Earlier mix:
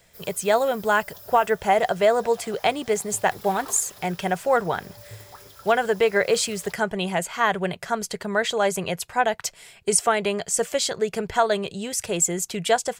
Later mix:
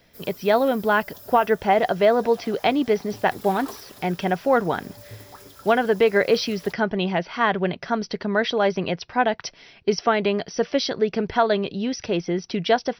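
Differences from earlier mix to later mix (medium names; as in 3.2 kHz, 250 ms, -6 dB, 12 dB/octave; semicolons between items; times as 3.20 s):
speech: add brick-wall FIR low-pass 6 kHz; master: add peaking EQ 270 Hz +12 dB 0.64 oct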